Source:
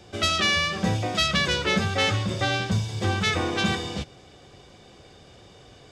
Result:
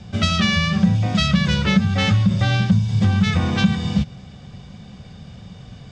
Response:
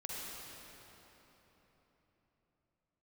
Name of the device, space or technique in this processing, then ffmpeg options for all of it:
jukebox: -af "lowpass=6700,lowshelf=frequency=260:width_type=q:width=3:gain=9,acompressor=threshold=-17dB:ratio=4,volume=3.5dB"

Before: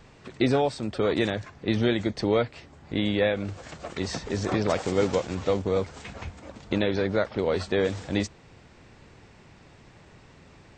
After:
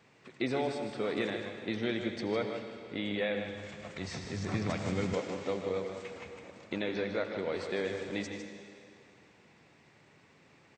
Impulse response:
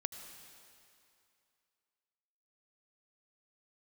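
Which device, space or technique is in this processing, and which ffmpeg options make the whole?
PA in a hall: -filter_complex "[0:a]highpass=150,equalizer=frequency=2200:width_type=o:width=0.56:gain=5,aecho=1:1:154:0.398[link_01];[1:a]atrim=start_sample=2205[link_02];[link_01][link_02]afir=irnorm=-1:irlink=0,asettb=1/sr,asplit=3[link_03][link_04][link_05];[link_03]atrim=end=3.094[link_06];[link_04]atrim=start=3.09:end=5.14,asetpts=PTS-STARTPTS,afade=type=in:duration=0.004:curve=qsin,afade=type=out:start_time=2.046:duration=0.004:curve=qsin,asubboost=boost=10.5:cutoff=160[link_07];[link_05]atrim=start=5.136[link_08];[link_06][link_07]acrossfade=duration=0.004:curve1=hsin:curve2=qsin[link_09];[link_09][link_08]acrossfade=duration=0.004:curve1=qsin:curve2=hsin,volume=-8.5dB"

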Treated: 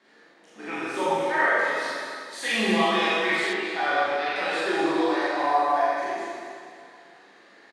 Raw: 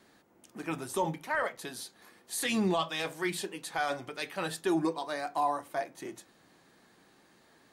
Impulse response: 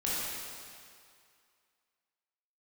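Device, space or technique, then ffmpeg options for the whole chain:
station announcement: -filter_complex "[0:a]highpass=320,lowpass=4900,equalizer=frequency=1900:width_type=o:width=0.36:gain=6,aecho=1:1:40.82|256.6:0.794|0.251[link_01];[1:a]atrim=start_sample=2205[link_02];[link_01][link_02]afir=irnorm=-1:irlink=0,asettb=1/sr,asplit=3[link_03][link_04][link_05];[link_03]atrim=end=3.534[link_06];[link_04]atrim=start=3.53:end=4.36,asetpts=PTS-STARTPTS,afade=type=in:duration=0.004:curve=qsin,afade=type=out:start_time=0.826:duration=0.004:curve=qsin,acrossover=split=4500[link_07][link_08];[link_08]acompressor=threshold=-55dB:ratio=4:attack=1:release=60[link_09];[link_07][link_09]amix=inputs=2:normalize=0[link_10];[link_05]atrim=start=4.356[link_11];[link_06][link_10]acrossfade=duration=0.004:curve1=hsin:curve2=qsin[link_12];[link_12][link_11]acrossfade=duration=0.004:curve1=qsin:curve2=hsin"

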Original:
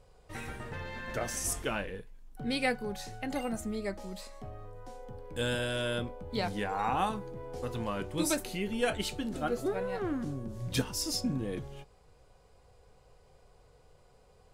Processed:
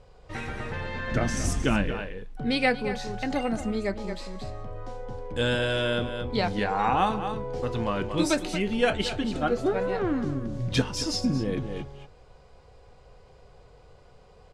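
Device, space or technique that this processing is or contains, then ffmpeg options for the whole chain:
ducked delay: -filter_complex "[0:a]asplit=3[link_01][link_02][link_03];[link_02]adelay=228,volume=-5dB[link_04];[link_03]apad=whole_len=651127[link_05];[link_04][link_05]sidechaincompress=threshold=-37dB:ratio=8:attack=8.1:release=300[link_06];[link_01][link_06]amix=inputs=2:normalize=0,lowpass=5500,asettb=1/sr,asplit=3[link_07][link_08][link_09];[link_07]atrim=end=1.114[link_10];[link_08]atrim=start=1.11:end=1.92,asetpts=PTS-STARTPTS,afade=type=in:duration=0.004:curve=qsin,afade=type=out:start_time=0.806:duration=0.004:curve=qsin,lowshelf=frequency=350:width_type=q:width=1.5:gain=7[link_11];[link_09]atrim=start=1.916[link_12];[link_10][link_11]acrossfade=duration=0.004:curve1=hsin:curve2=qsin[link_13];[link_13][link_12]acrossfade=duration=0.004:curve1=qsin:curve2=hsin,volume=6.5dB"

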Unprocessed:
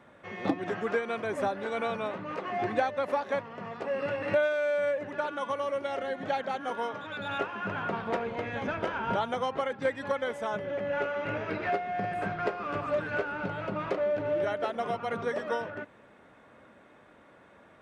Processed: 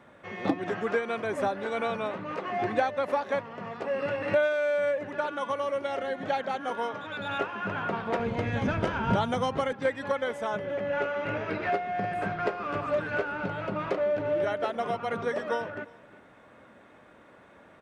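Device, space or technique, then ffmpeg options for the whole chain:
ducked delay: -filter_complex "[0:a]asplit=3[link_01][link_02][link_03];[link_02]adelay=353,volume=-6dB[link_04];[link_03]apad=whole_len=794929[link_05];[link_04][link_05]sidechaincompress=threshold=-54dB:ratio=8:attack=16:release=560[link_06];[link_01][link_06]amix=inputs=2:normalize=0,asettb=1/sr,asplit=3[link_07][link_08][link_09];[link_07]atrim=end=8.194[link_10];[link_08]atrim=start=8.19:end=9.73,asetpts=PTS-STARTPTS,afade=type=in:duration=0.004:curve=qsin,afade=type=out:start_time=1.536:duration=0.004:curve=qsin,bass=frequency=250:gain=11,treble=frequency=4000:gain=6[link_11];[link_09]atrim=start=9.726[link_12];[link_10][link_11]acrossfade=duration=0.004:curve1=hsin:curve2=qsin[link_13];[link_13][link_12]acrossfade=duration=0.004:curve1=qsin:curve2=hsin,volume=1.5dB"

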